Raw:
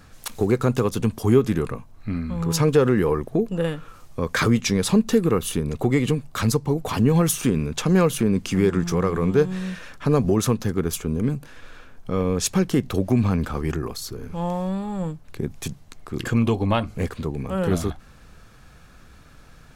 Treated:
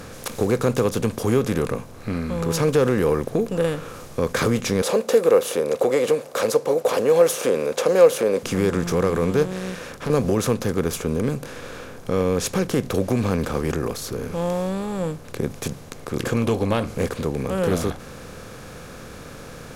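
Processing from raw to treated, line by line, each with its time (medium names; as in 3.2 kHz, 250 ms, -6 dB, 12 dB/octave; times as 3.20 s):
4.82–8.43 s: resonant high-pass 530 Hz, resonance Q 6.2
9.43–10.10 s: valve stage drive 23 dB, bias 0.7
whole clip: spectral levelling over time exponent 0.6; trim -5 dB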